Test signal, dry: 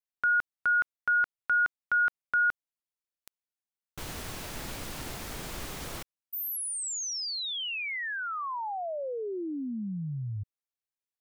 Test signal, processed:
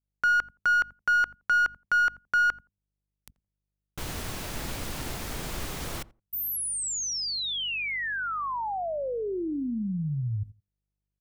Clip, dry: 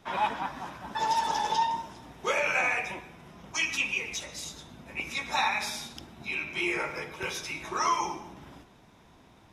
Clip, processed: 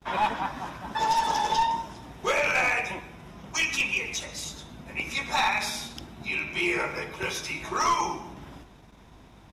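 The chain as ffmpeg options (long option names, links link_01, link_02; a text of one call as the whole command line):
ffmpeg -i in.wav -filter_complex "[0:a]aeval=exprs='clip(val(0),-1,0.0708)':channel_layout=same,lowshelf=frequency=170:gain=3,aeval=exprs='val(0)+0.00126*(sin(2*PI*50*n/s)+sin(2*PI*2*50*n/s)/2+sin(2*PI*3*50*n/s)/3+sin(2*PI*4*50*n/s)/4+sin(2*PI*5*50*n/s)/5)':channel_layout=same,agate=range=-31dB:threshold=-56dB:ratio=16:release=53:detection=rms,asplit=2[link_01][link_02];[link_02]adelay=85,lowpass=frequency=840:poles=1,volume=-18.5dB,asplit=2[link_03][link_04];[link_04]adelay=85,lowpass=frequency=840:poles=1,volume=0.18[link_05];[link_03][link_05]amix=inputs=2:normalize=0[link_06];[link_01][link_06]amix=inputs=2:normalize=0,volume=3dB" out.wav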